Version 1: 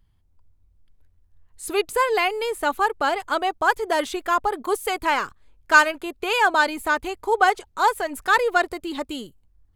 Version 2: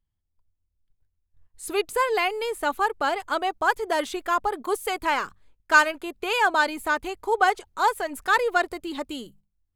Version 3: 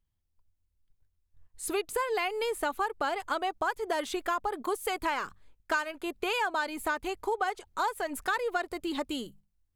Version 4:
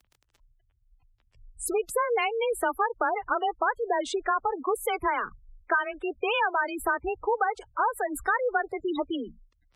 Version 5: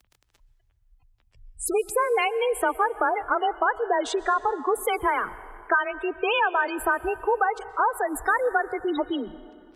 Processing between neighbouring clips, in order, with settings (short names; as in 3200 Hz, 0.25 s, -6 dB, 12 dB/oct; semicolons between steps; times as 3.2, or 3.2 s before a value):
gate -50 dBFS, range -14 dB; notches 50/100/150/200 Hz; gain -2.5 dB
compressor 6:1, threshold -27 dBFS, peak gain reduction 15 dB
crackle 54/s -46 dBFS; frequency shift +25 Hz; spectral gate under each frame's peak -15 dB strong; gain +4.5 dB
plate-style reverb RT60 2.3 s, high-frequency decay 0.7×, pre-delay 0.11 s, DRR 16.5 dB; gain +3 dB